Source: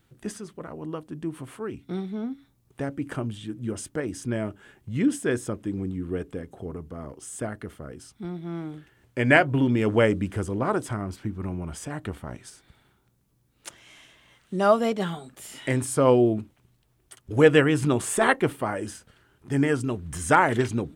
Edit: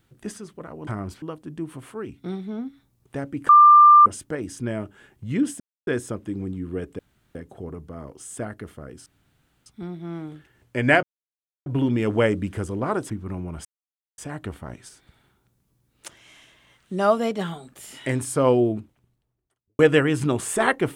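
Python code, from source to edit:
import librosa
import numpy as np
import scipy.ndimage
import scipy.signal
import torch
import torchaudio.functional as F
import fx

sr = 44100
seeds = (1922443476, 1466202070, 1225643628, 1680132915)

y = fx.studio_fade_out(x, sr, start_s=16.15, length_s=1.25)
y = fx.edit(y, sr, fx.bleep(start_s=3.14, length_s=0.57, hz=1190.0, db=-7.5),
    fx.insert_silence(at_s=5.25, length_s=0.27),
    fx.insert_room_tone(at_s=6.37, length_s=0.36),
    fx.insert_room_tone(at_s=8.08, length_s=0.6),
    fx.insert_silence(at_s=9.45, length_s=0.63),
    fx.move(start_s=10.89, length_s=0.35, to_s=0.87),
    fx.insert_silence(at_s=11.79, length_s=0.53), tone=tone)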